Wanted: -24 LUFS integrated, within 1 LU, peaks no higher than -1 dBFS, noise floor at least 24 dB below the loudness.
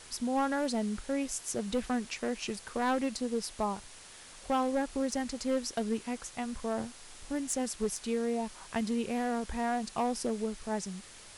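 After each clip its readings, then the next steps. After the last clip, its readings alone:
clipped samples 1.0%; clipping level -24.0 dBFS; noise floor -51 dBFS; noise floor target -58 dBFS; loudness -33.5 LUFS; peak level -24.0 dBFS; loudness target -24.0 LUFS
-> clip repair -24 dBFS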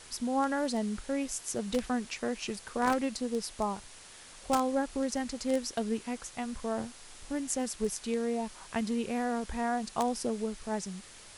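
clipped samples 0.0%; noise floor -51 dBFS; noise floor target -57 dBFS
-> noise print and reduce 6 dB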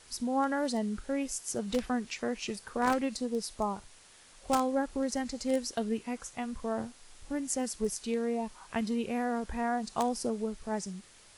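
noise floor -57 dBFS; loudness -33.0 LUFS; peak level -15.0 dBFS; loudness target -24.0 LUFS
-> trim +9 dB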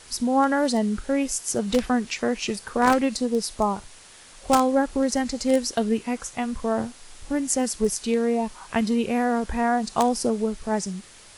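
loudness -24.0 LUFS; peak level -6.0 dBFS; noise floor -48 dBFS

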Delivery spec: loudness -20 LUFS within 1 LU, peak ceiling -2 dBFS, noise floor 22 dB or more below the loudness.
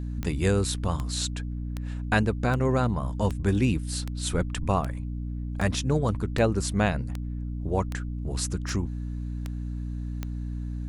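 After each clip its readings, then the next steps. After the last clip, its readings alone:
clicks found 14; hum 60 Hz; highest harmonic 300 Hz; hum level -30 dBFS; loudness -28.5 LUFS; peak level -8.5 dBFS; loudness target -20.0 LUFS
-> de-click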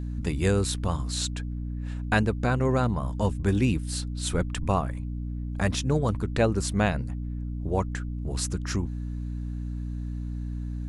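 clicks found 0; hum 60 Hz; highest harmonic 300 Hz; hum level -30 dBFS
-> de-hum 60 Hz, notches 5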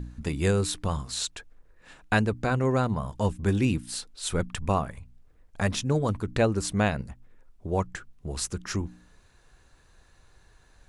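hum not found; loudness -28.0 LUFS; peak level -8.5 dBFS; loudness target -20.0 LUFS
-> trim +8 dB; peak limiter -2 dBFS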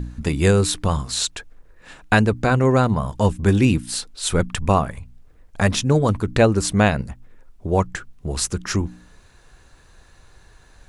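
loudness -20.5 LUFS; peak level -2.0 dBFS; noise floor -51 dBFS

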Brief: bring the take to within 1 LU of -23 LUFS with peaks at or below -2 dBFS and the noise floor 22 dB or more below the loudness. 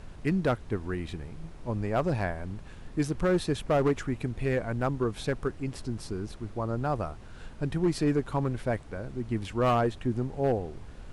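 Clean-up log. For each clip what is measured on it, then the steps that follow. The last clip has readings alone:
clipped samples 0.8%; clipping level -19.0 dBFS; noise floor -46 dBFS; noise floor target -53 dBFS; loudness -30.5 LUFS; peak level -19.0 dBFS; loudness target -23.0 LUFS
-> clip repair -19 dBFS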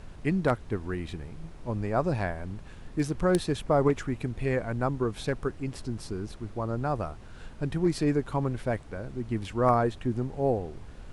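clipped samples 0.0%; noise floor -46 dBFS; noise floor target -52 dBFS
-> noise print and reduce 6 dB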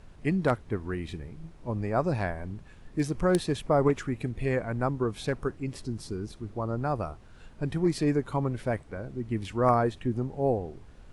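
noise floor -51 dBFS; noise floor target -52 dBFS
-> noise print and reduce 6 dB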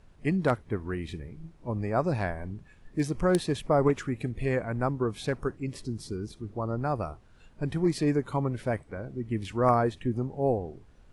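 noise floor -56 dBFS; loudness -30.0 LUFS; peak level -10.5 dBFS; loudness target -23.0 LUFS
-> trim +7 dB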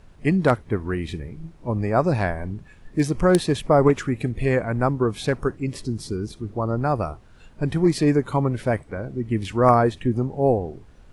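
loudness -23.0 LUFS; peak level -3.5 dBFS; noise floor -49 dBFS

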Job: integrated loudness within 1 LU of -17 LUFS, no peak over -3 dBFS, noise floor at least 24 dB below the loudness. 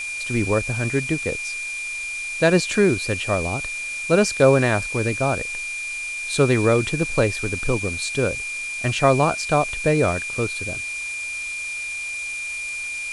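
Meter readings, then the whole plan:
steady tone 2.4 kHz; tone level -27 dBFS; noise floor -30 dBFS; noise floor target -46 dBFS; loudness -22.0 LUFS; peak level -3.0 dBFS; loudness target -17.0 LUFS
-> band-stop 2.4 kHz, Q 30; noise reduction 16 dB, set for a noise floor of -30 dBFS; trim +5 dB; peak limiter -3 dBFS

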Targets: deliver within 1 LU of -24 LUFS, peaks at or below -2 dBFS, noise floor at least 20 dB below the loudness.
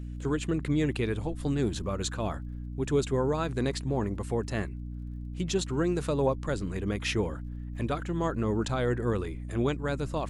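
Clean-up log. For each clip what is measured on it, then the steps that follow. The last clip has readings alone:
tick rate 27 per s; hum 60 Hz; highest harmonic 300 Hz; hum level -35 dBFS; loudness -30.5 LUFS; peak level -14.5 dBFS; loudness target -24.0 LUFS
-> de-click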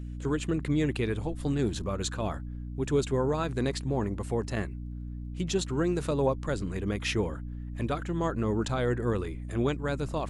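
tick rate 0 per s; hum 60 Hz; highest harmonic 300 Hz; hum level -35 dBFS
-> hum notches 60/120/180/240/300 Hz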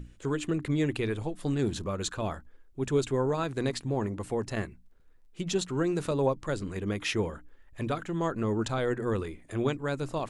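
hum not found; loudness -31.0 LUFS; peak level -14.5 dBFS; loudness target -24.0 LUFS
-> trim +7 dB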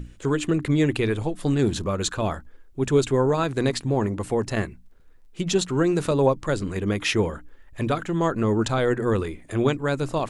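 loudness -24.0 LUFS; peak level -7.5 dBFS; noise floor -49 dBFS

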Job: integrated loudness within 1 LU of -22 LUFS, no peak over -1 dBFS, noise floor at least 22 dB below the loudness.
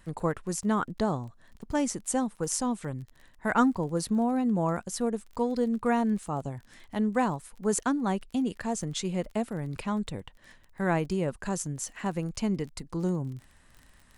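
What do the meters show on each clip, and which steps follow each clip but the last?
tick rate 26 per s; loudness -30.0 LUFS; peak level -12.0 dBFS; loudness target -22.0 LUFS
-> de-click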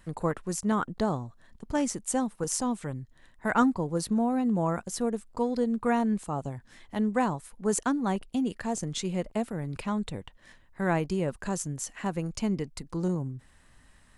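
tick rate 0 per s; loudness -30.0 LUFS; peak level -12.0 dBFS; loudness target -22.0 LUFS
-> trim +8 dB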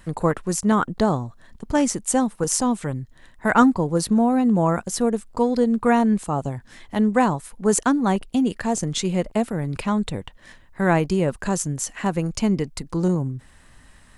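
loudness -22.0 LUFS; peak level -4.0 dBFS; noise floor -51 dBFS

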